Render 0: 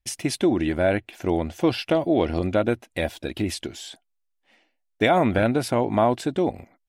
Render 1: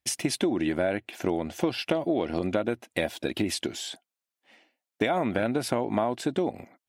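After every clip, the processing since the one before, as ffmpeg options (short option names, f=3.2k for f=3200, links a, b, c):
-af "highpass=140,acompressor=threshold=-25dB:ratio=6,volume=2.5dB"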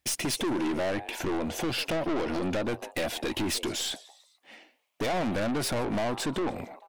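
-filter_complex "[0:a]asplit=4[a][b][c][d];[b]adelay=147,afreqshift=150,volume=-24dB[e];[c]adelay=294,afreqshift=300,volume=-29.7dB[f];[d]adelay=441,afreqshift=450,volume=-35.4dB[g];[a][e][f][g]amix=inputs=4:normalize=0,aeval=exprs='(tanh(50.1*val(0)+0.2)-tanh(0.2))/50.1':c=same,volume=7.5dB"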